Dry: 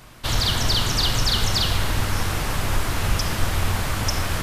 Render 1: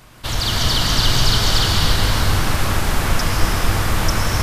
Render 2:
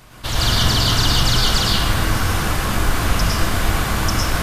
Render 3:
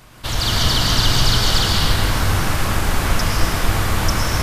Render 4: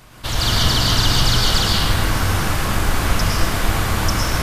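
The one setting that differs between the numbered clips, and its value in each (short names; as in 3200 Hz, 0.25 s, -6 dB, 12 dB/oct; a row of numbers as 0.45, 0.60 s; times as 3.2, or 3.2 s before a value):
plate-style reverb, RT60: 5.3, 0.52, 2.5, 1.2 s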